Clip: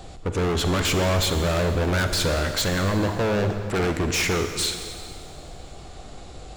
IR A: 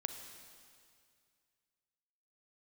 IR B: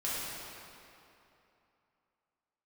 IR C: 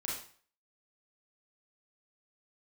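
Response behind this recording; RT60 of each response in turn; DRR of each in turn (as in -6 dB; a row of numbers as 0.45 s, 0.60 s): A; 2.2 s, 2.9 s, 0.45 s; 6.5 dB, -9.5 dB, -5.0 dB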